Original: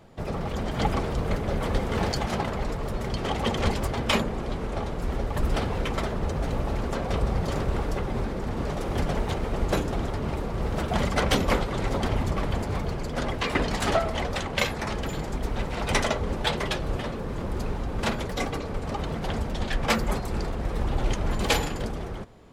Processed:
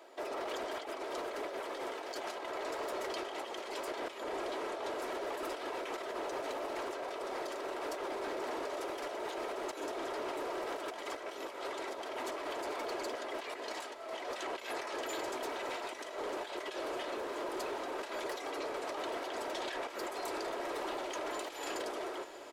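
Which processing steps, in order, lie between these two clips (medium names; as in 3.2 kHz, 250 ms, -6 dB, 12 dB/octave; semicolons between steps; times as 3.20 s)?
inverse Chebyshev high-pass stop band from 180 Hz, stop band 40 dB; comb 3.1 ms, depth 36%; compressor with a negative ratio -36 dBFS, ratio -1; saturation -27.5 dBFS, distortion -19 dB; echo that smears into a reverb 672 ms, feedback 71%, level -14 dB; trim -3.5 dB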